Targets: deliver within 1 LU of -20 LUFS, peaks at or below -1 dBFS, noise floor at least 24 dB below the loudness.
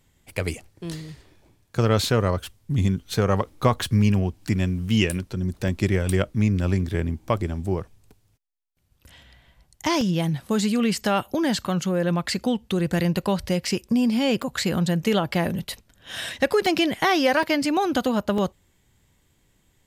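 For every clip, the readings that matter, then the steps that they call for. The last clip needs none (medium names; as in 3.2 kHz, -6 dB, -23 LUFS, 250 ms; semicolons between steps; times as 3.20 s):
dropouts 7; longest dropout 2.8 ms; loudness -23.5 LUFS; peak level -5.5 dBFS; loudness target -20.0 LUFS
-> interpolate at 5.68/10.01/13.67/14.42/16.66/17.43/18.38 s, 2.8 ms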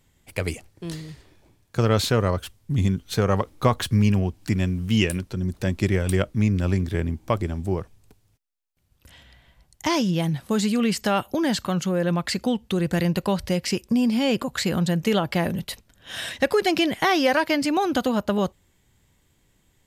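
dropouts 0; loudness -23.5 LUFS; peak level -5.5 dBFS; loudness target -20.0 LUFS
-> trim +3.5 dB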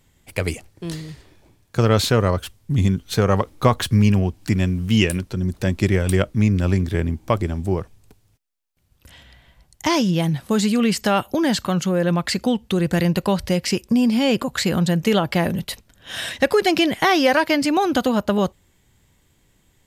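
loudness -20.0 LUFS; peak level -2.0 dBFS; noise floor -62 dBFS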